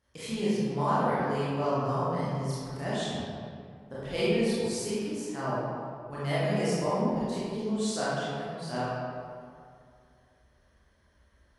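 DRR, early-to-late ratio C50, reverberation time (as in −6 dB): −11.0 dB, −5.0 dB, 2.2 s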